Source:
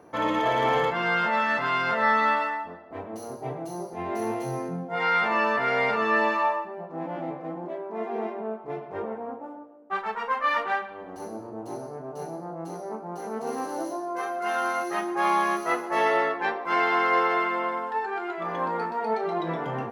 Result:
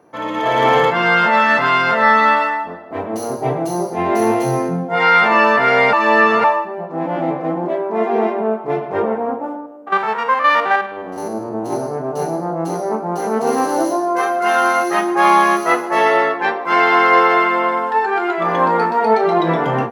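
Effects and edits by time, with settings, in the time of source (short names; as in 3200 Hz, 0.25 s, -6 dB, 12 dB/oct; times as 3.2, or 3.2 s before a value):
5.93–6.44 reverse
9.56–11.73 stepped spectrum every 50 ms
whole clip: HPF 95 Hz; AGC gain up to 14.5 dB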